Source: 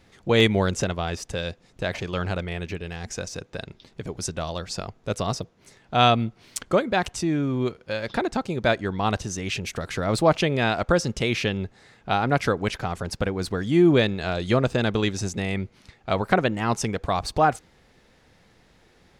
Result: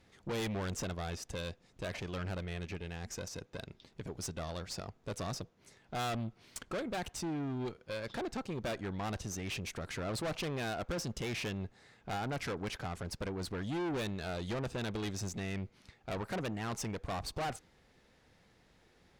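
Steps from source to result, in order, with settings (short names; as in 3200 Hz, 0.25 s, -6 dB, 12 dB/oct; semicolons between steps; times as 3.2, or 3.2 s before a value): tube stage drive 27 dB, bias 0.45; gain -6.5 dB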